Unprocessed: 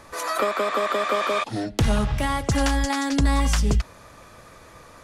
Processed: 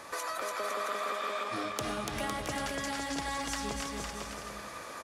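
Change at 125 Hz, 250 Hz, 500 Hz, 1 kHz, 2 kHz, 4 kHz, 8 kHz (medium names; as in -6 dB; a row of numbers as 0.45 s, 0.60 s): -20.5 dB, -13.5 dB, -11.0 dB, -8.5 dB, -8.0 dB, -7.5 dB, -6.5 dB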